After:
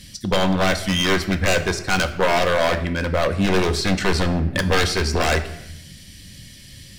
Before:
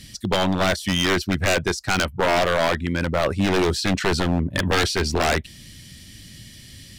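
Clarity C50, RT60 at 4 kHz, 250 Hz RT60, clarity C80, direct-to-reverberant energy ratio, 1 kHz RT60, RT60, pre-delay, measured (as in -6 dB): 12.0 dB, 0.65 s, 1.2 s, 14.0 dB, 6.5 dB, 0.80 s, 0.80 s, 4 ms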